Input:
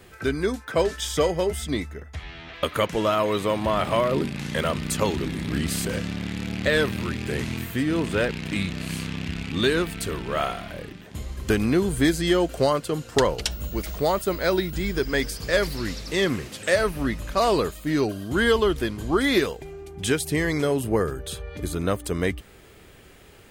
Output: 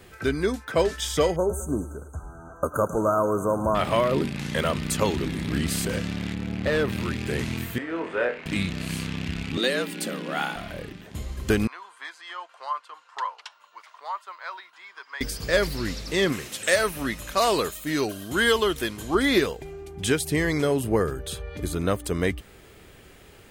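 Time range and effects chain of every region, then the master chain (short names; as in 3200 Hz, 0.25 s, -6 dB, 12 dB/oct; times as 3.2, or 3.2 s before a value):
1.36–3.75 brick-wall FIR band-stop 1600–6000 Hz + thinning echo 0.107 s, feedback 69%, high-pass 320 Hz, level -15 dB
6.34–6.89 high shelf 2200 Hz -9.5 dB + overloaded stage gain 18 dB
7.78–8.46 LPF 8800 Hz 24 dB/oct + three-band isolator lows -23 dB, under 390 Hz, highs -19 dB, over 2200 Hz + flutter echo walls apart 4.2 m, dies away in 0.26 s
9.57–10.56 frequency shift +120 Hz + dynamic EQ 570 Hz, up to -5 dB, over -32 dBFS, Q 0.7
11.67–15.21 ladder band-pass 1100 Hz, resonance 70% + tilt +4.5 dB/oct
16.32–19.15 tilt +2 dB/oct + notch 4700 Hz, Q 14
whole clip: dry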